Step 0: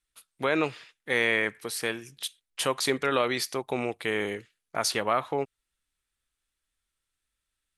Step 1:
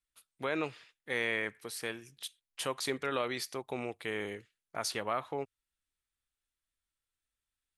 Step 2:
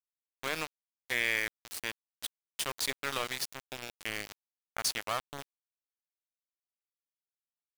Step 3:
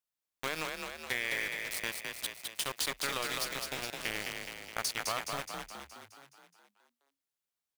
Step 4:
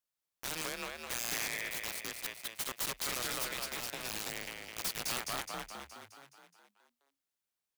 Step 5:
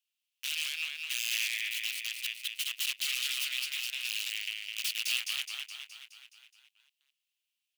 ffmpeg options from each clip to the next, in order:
ffmpeg -i in.wav -af "equalizer=frequency=91:width_type=o:width=0.43:gain=4,volume=-8dB" out.wav
ffmpeg -i in.wav -af "tiltshelf=frequency=860:gain=-6,aeval=exprs='val(0)*gte(abs(val(0)),0.0316)':channel_layout=same" out.wav
ffmpeg -i in.wav -filter_complex "[0:a]acompressor=threshold=-33dB:ratio=6,asplit=2[link_01][link_02];[link_02]asplit=8[link_03][link_04][link_05][link_06][link_07][link_08][link_09][link_10];[link_03]adelay=210,afreqshift=34,volume=-4dB[link_11];[link_04]adelay=420,afreqshift=68,volume=-8.7dB[link_12];[link_05]adelay=630,afreqshift=102,volume=-13.5dB[link_13];[link_06]adelay=840,afreqshift=136,volume=-18.2dB[link_14];[link_07]adelay=1050,afreqshift=170,volume=-22.9dB[link_15];[link_08]adelay=1260,afreqshift=204,volume=-27.7dB[link_16];[link_09]adelay=1470,afreqshift=238,volume=-32.4dB[link_17];[link_10]adelay=1680,afreqshift=272,volume=-37.1dB[link_18];[link_11][link_12][link_13][link_14][link_15][link_16][link_17][link_18]amix=inputs=8:normalize=0[link_19];[link_01][link_19]amix=inputs=2:normalize=0,volume=3dB" out.wav
ffmpeg -i in.wav -af "aeval=exprs='(mod(22.4*val(0)+1,2)-1)/22.4':channel_layout=same" out.wav
ffmpeg -i in.wav -af "highpass=frequency=2800:width_type=q:width=5.1" out.wav

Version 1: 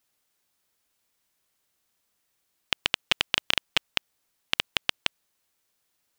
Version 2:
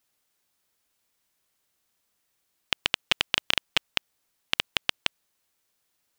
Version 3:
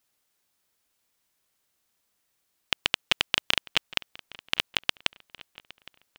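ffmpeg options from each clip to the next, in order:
ffmpeg -i in.wav -af anull out.wav
ffmpeg -i in.wav -filter_complex "[0:a]asplit=2[link_01][link_02];[link_02]adelay=813,lowpass=frequency=3900:poles=1,volume=-19.5dB,asplit=2[link_03][link_04];[link_04]adelay=813,lowpass=frequency=3900:poles=1,volume=0.4,asplit=2[link_05][link_06];[link_06]adelay=813,lowpass=frequency=3900:poles=1,volume=0.4[link_07];[link_01][link_03][link_05][link_07]amix=inputs=4:normalize=0" out.wav

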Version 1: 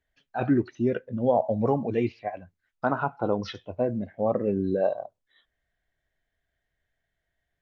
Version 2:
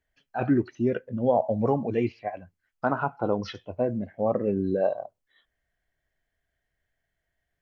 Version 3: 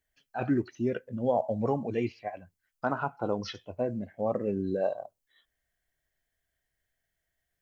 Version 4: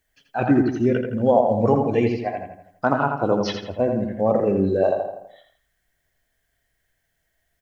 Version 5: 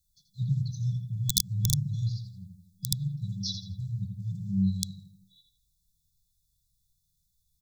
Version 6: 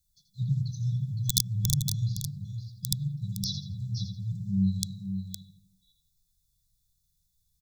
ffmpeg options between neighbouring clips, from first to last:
ffmpeg -i in.wav -af "bandreject=frequency=3700:width=9.8" out.wav
ffmpeg -i in.wav -af "highshelf=frequency=4500:gain=11.5,volume=-4.5dB" out.wav
ffmpeg -i in.wav -filter_complex "[0:a]asplit=2[link_01][link_02];[link_02]adelay=83,lowpass=frequency=3300:poles=1,volume=-4.5dB,asplit=2[link_03][link_04];[link_04]adelay=83,lowpass=frequency=3300:poles=1,volume=0.49,asplit=2[link_05][link_06];[link_06]adelay=83,lowpass=frequency=3300:poles=1,volume=0.49,asplit=2[link_07][link_08];[link_08]adelay=83,lowpass=frequency=3300:poles=1,volume=0.49,asplit=2[link_09][link_10];[link_10]adelay=83,lowpass=frequency=3300:poles=1,volume=0.49,asplit=2[link_11][link_12];[link_12]adelay=83,lowpass=frequency=3300:poles=1,volume=0.49[link_13];[link_01][link_03][link_05][link_07][link_09][link_11][link_13]amix=inputs=7:normalize=0,volume=9dB" out.wav
ffmpeg -i in.wav -af "aeval=exprs='(mod(2.24*val(0)+1,2)-1)/2.24':channel_layout=same,afftfilt=real='re*(1-between(b*sr/4096,200,3400))':imag='im*(1-between(b*sr/4096,200,3400))':win_size=4096:overlap=0.75" out.wav
ffmpeg -i in.wav -af "aecho=1:1:513:0.398" out.wav

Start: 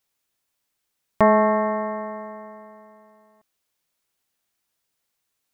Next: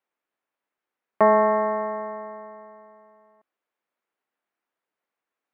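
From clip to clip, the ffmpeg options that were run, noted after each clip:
ffmpeg -i in.wav -filter_complex "[0:a]acrossover=split=220 2300:gain=0.0708 1 0.0794[link_01][link_02][link_03];[link_01][link_02][link_03]amix=inputs=3:normalize=0" out.wav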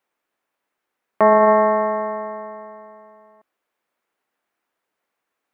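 ffmpeg -i in.wav -af "alimiter=limit=-13dB:level=0:latency=1:release=22,volume=7.5dB" out.wav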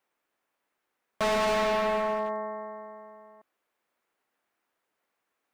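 ffmpeg -i in.wav -af "asoftclip=type=hard:threshold=-23dB,volume=-1.5dB" out.wav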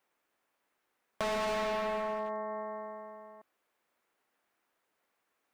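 ffmpeg -i in.wav -af "acompressor=threshold=-35dB:ratio=4,volume=1dB" out.wav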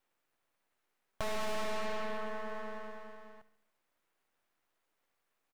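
ffmpeg -i in.wav -af "aeval=exprs='max(val(0),0)':channel_layout=same,aecho=1:1:71|142|213|284|355:0.158|0.0888|0.0497|0.0278|0.0156,volume=1dB" out.wav

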